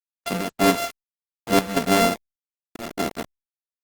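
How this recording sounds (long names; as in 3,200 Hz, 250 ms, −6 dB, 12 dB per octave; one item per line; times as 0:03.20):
a buzz of ramps at a fixed pitch in blocks of 64 samples
chopped level 1.7 Hz, depth 65%, duty 70%
a quantiser's noise floor 6 bits, dither none
Opus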